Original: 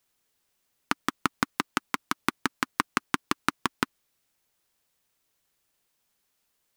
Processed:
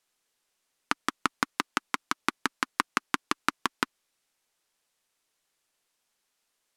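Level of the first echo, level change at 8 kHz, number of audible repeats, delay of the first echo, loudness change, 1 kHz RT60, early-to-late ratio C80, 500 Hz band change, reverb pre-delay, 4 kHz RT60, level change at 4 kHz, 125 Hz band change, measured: no echo, -0.5 dB, no echo, no echo, -0.5 dB, no reverb, no reverb, -2.0 dB, no reverb, no reverb, 0.0 dB, -7.0 dB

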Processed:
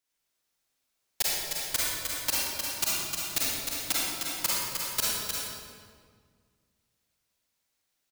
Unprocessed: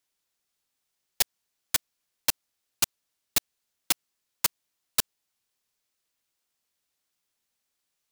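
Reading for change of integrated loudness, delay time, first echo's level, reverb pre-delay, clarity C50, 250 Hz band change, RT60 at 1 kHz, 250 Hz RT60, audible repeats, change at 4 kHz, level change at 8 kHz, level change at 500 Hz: 0.0 dB, 307 ms, -5.0 dB, 37 ms, -5.5 dB, +3.5 dB, 1.7 s, 2.4 s, 1, +2.0 dB, +1.5 dB, +4.0 dB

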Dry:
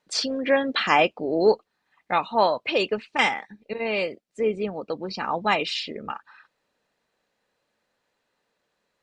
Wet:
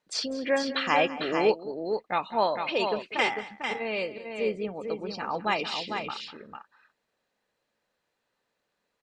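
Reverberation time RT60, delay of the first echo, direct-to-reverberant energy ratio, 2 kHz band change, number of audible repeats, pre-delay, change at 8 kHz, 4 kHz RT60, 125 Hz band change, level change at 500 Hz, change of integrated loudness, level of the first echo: no reverb, 198 ms, no reverb, -4.0 dB, 2, no reverb, -4.0 dB, no reverb, -4.0 dB, -4.0 dB, -4.5 dB, -16.5 dB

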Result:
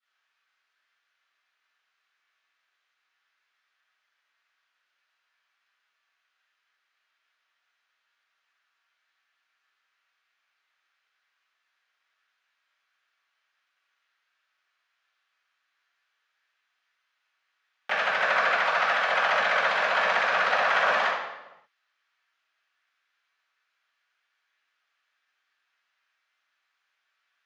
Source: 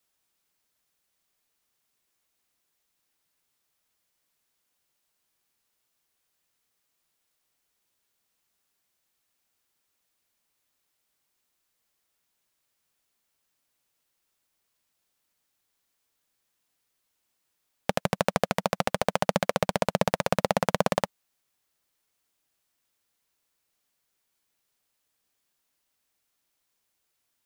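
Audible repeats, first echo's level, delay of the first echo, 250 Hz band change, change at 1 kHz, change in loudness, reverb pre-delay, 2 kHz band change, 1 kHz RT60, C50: no echo, no echo, no echo, -17.5 dB, +4.5 dB, +4.0 dB, 3 ms, +12.0 dB, 0.95 s, -1.5 dB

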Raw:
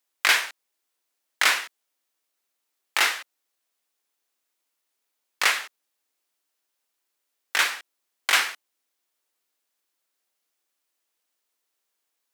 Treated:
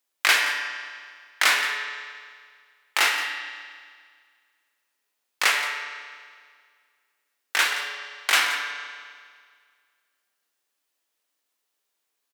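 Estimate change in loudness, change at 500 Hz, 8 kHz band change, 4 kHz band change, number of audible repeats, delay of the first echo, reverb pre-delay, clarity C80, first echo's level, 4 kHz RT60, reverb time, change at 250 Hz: -0.5 dB, +1.5 dB, +0.5 dB, +1.5 dB, 1, 173 ms, 14 ms, 5.5 dB, -13.5 dB, 1.8 s, 1.9 s, +1.5 dB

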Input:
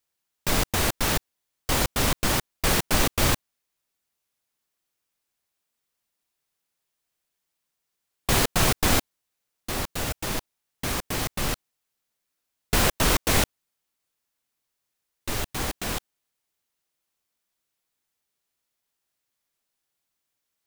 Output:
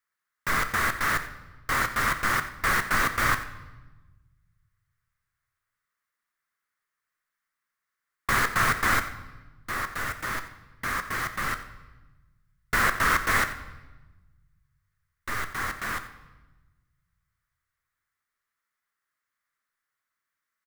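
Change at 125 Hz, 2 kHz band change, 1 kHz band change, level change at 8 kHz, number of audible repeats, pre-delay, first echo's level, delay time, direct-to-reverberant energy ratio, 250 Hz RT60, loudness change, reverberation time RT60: -7.5 dB, +5.5 dB, +3.0 dB, -8.0 dB, 1, 7 ms, -15.0 dB, 89 ms, 8.0 dB, 1.7 s, -1.5 dB, 1.1 s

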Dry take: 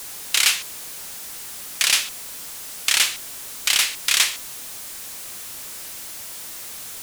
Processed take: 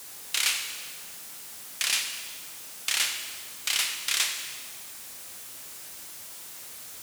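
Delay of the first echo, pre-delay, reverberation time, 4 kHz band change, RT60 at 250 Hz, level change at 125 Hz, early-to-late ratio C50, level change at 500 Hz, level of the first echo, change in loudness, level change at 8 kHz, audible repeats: no echo, 7 ms, 1.7 s, -7.5 dB, 1.6 s, no reading, 6.0 dB, -7.0 dB, no echo, -7.5 dB, -7.5 dB, no echo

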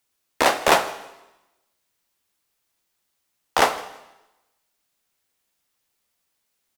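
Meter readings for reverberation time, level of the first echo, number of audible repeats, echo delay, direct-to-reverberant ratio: 0.95 s, -22.5 dB, 1, 161 ms, 9.5 dB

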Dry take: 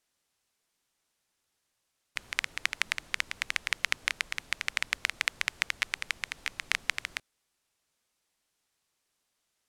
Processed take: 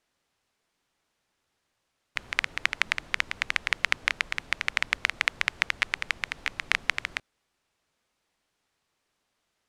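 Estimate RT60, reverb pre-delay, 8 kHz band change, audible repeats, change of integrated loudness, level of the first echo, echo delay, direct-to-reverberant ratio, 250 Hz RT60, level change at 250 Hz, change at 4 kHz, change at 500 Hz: no reverb, no reverb, -2.0 dB, no echo, +4.0 dB, no echo, no echo, no reverb, no reverb, +6.5 dB, +2.0 dB, +6.5 dB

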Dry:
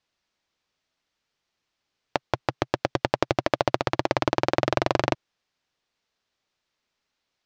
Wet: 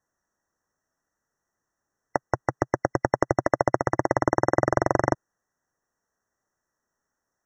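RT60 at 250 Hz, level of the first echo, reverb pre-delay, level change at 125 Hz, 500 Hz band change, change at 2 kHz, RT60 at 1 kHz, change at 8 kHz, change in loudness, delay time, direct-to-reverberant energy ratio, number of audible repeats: no reverb, no echo, no reverb, +1.5 dB, +1.5 dB, -0.5 dB, no reverb, +1.5 dB, +1.0 dB, no echo, no reverb, no echo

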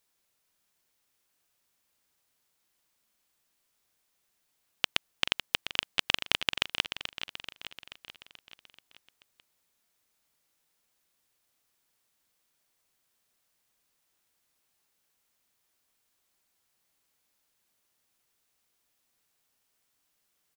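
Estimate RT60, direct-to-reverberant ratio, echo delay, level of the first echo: no reverb, no reverb, 433 ms, -9.5 dB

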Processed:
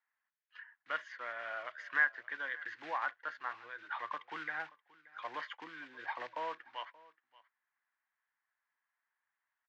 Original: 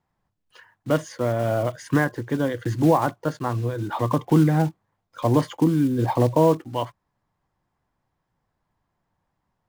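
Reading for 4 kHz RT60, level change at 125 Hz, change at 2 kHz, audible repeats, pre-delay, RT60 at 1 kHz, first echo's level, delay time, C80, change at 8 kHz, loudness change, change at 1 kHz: no reverb, under -40 dB, -1.0 dB, 1, no reverb, no reverb, -21.5 dB, 578 ms, no reverb, under -25 dB, -17.0 dB, -13.5 dB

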